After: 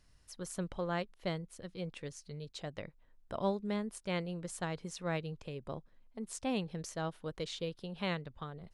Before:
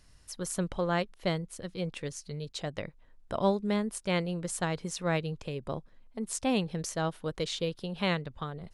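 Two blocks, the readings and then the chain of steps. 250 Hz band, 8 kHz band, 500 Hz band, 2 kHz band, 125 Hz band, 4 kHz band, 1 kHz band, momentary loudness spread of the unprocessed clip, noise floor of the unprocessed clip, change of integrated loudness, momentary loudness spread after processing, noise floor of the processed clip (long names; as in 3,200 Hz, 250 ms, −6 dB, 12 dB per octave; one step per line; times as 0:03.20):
−6.5 dB, −9.0 dB, −6.5 dB, −7.0 dB, −6.5 dB, −7.0 dB, −6.5 dB, 10 LU, −59 dBFS, −6.5 dB, 10 LU, −65 dBFS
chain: high-shelf EQ 7,500 Hz −4.5 dB
level −6.5 dB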